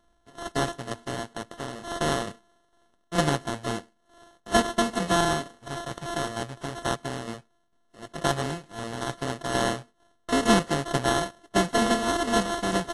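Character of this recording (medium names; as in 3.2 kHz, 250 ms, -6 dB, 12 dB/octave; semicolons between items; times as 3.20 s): a buzz of ramps at a fixed pitch in blocks of 64 samples; tremolo saw down 2.2 Hz, depth 55%; aliases and images of a low sample rate 2.4 kHz, jitter 0%; AAC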